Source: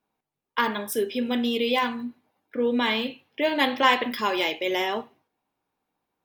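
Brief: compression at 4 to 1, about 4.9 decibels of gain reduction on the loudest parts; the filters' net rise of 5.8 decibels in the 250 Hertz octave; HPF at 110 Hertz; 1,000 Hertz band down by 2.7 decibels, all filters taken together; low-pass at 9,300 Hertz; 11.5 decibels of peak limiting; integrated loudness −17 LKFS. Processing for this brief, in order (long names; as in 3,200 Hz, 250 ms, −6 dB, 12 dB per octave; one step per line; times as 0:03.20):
high-pass filter 110 Hz
low-pass filter 9,300 Hz
parametric band 250 Hz +6.5 dB
parametric band 1,000 Hz −3.5 dB
downward compressor 4 to 1, threshold −22 dBFS
level +14 dB
brickwall limiter −8.5 dBFS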